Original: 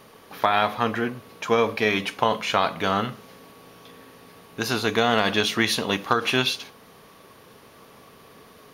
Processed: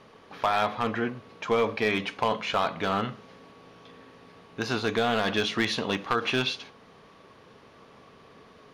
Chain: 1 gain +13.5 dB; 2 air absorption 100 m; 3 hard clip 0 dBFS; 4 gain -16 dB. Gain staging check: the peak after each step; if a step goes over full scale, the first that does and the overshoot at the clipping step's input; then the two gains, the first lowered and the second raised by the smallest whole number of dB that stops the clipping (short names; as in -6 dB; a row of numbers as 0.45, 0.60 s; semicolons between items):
+8.5, +8.5, 0.0, -16.0 dBFS; step 1, 8.5 dB; step 1 +4.5 dB, step 4 -7 dB